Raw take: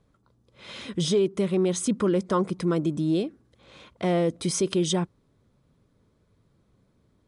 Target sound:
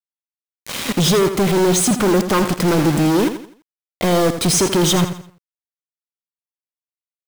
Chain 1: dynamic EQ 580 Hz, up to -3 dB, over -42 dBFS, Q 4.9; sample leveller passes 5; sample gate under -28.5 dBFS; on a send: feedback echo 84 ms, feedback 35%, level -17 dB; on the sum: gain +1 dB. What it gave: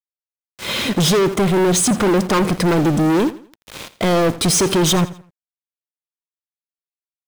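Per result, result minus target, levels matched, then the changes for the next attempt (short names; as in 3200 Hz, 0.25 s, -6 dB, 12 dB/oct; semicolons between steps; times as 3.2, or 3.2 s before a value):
sample gate: distortion -15 dB; echo-to-direct -7 dB
change: sample gate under -18 dBFS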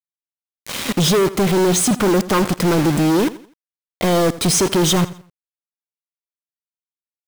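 echo-to-direct -7 dB
change: feedback echo 84 ms, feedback 35%, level -10 dB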